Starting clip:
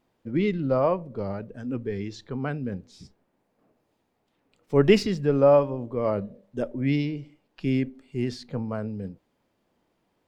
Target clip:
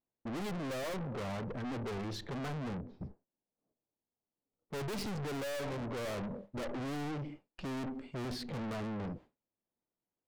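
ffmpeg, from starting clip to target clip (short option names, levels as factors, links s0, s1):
-filter_complex "[0:a]aemphasis=mode=reproduction:type=75fm,agate=range=0.0224:threshold=0.00447:ratio=3:detection=peak,asettb=1/sr,asplit=3[s0][s1][s2];[s0]atrim=end=2.484[s3];[s1]atrim=start=2.48:end=4.91,asetpts=PTS-STARTPTS,afade=t=in:d=0.004:c=qsin,afade=t=out:st=2.426:d=0.004:c=qsin,lowpass=1100[s4];[s2]atrim=start=4.906[s5];[s3][s4]acrossfade=d=0.004:c1=hsin:c2=qsin[s6];[s6][s5]acrossfade=d=0.004:c1=qsin:c2=hsin,aeval=exprs='(tanh(224*val(0)+0.2)-tanh(0.2))/224':c=same,volume=2.99"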